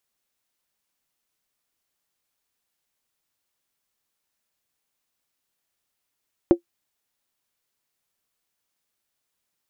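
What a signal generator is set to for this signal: skin hit, lowest mode 344 Hz, decay 0.10 s, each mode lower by 11 dB, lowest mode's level -5.5 dB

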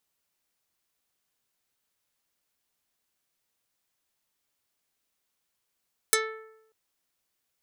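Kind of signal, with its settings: plucked string A4, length 0.59 s, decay 0.84 s, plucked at 0.46, dark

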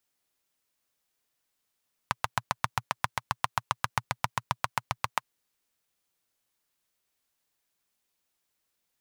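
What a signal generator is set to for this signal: single-cylinder engine model, steady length 3.20 s, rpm 900, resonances 120/1000 Hz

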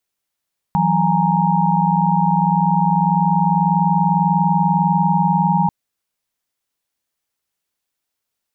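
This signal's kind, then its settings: chord E3/F#3/G#5/A#5 sine, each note -18.5 dBFS 4.94 s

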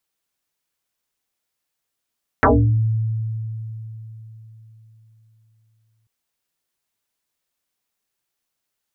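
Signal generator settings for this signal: FM tone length 3.64 s, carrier 111 Hz, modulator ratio 1.6, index 11, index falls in 0.45 s exponential, decay 4.03 s, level -9.5 dB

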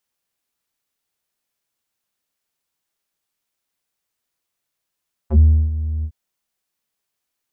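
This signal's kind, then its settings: synth note square D#2 12 dB/oct, low-pass 120 Hz, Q 1.7, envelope 3.5 oct, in 0.07 s, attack 71 ms, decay 0.33 s, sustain -13.5 dB, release 0.07 s, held 0.74 s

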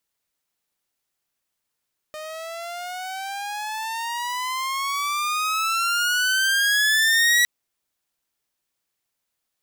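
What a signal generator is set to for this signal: gliding synth tone saw, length 5.31 s, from 612 Hz, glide +20 st, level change +18 dB, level -12 dB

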